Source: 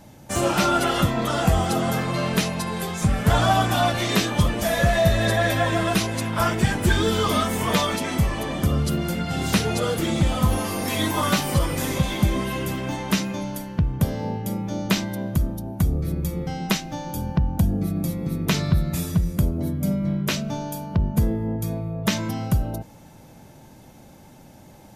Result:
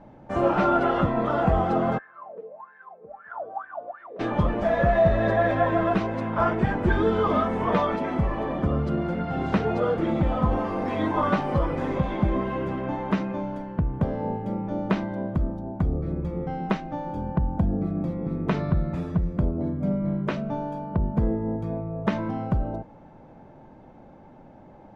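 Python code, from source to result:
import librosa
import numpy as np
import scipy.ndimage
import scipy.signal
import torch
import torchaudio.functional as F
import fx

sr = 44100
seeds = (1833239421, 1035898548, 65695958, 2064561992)

y = fx.wah_lfo(x, sr, hz=fx.line((1.97, 1.1), (4.19, 3.7)), low_hz=450.0, high_hz=1700.0, q=19.0, at=(1.97, 4.19), fade=0.02)
y = scipy.signal.sosfilt(scipy.signal.butter(2, 1200.0, 'lowpass', fs=sr, output='sos'), y)
y = fx.peak_eq(y, sr, hz=97.0, db=-8.0, octaves=2.3)
y = F.gain(torch.from_numpy(y), 2.5).numpy()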